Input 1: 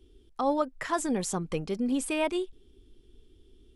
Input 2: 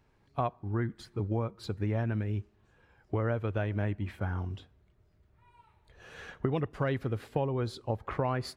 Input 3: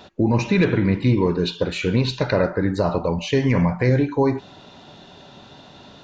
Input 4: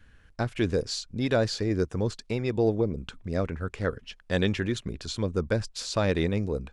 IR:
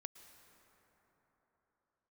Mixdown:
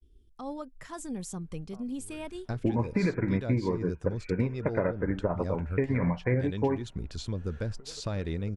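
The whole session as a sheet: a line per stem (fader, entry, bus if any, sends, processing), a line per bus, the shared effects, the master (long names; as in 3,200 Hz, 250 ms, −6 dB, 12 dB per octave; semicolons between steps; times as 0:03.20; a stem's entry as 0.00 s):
−13.5 dB, 0.00 s, no send, bass and treble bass +13 dB, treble +6 dB; downward expander −44 dBFS
−14.0 dB, 1.35 s, no send, downward compressor 10 to 1, threshold −39 dBFS, peak gain reduction 15 dB; hollow resonant body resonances 450/1,400 Hz, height 13 dB
+1.5 dB, 2.45 s, no send, Butterworth low-pass 2,400 Hz 96 dB per octave; expander for the loud parts 2.5 to 1, over −29 dBFS
−6.0 dB, 2.10 s, no send, downward compressor 2 to 1, threshold −31 dBFS, peak gain reduction 7 dB; low-shelf EQ 170 Hz +11 dB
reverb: not used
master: downward compressor 10 to 1, threshold −23 dBFS, peak gain reduction 10.5 dB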